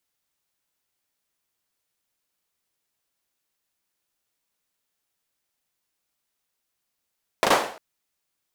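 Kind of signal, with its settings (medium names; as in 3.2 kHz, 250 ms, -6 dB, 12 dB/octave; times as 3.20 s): hand clap length 0.35 s, bursts 3, apart 37 ms, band 650 Hz, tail 0.49 s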